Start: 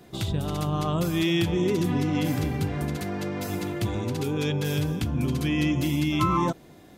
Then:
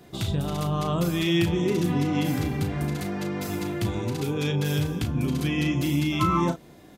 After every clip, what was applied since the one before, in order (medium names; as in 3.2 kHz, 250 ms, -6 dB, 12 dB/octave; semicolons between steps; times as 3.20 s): doubling 35 ms -8 dB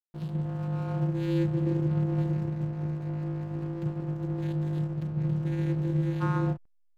vocoder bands 8, saw 183 Hz; frequency shift -31 Hz; hysteresis with a dead band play -35 dBFS; trim -2.5 dB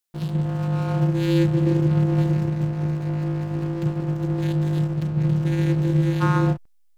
treble shelf 2.4 kHz +7.5 dB; trim +7.5 dB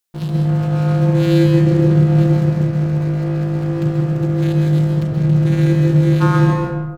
speakerphone echo 160 ms, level -10 dB; plate-style reverb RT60 1 s, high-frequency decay 0.45×, pre-delay 115 ms, DRR 0.5 dB; trim +4 dB